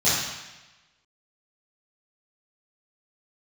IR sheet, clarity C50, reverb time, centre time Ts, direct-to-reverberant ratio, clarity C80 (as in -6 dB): -0.5 dB, 1.1 s, 82 ms, -13.0 dB, 2.5 dB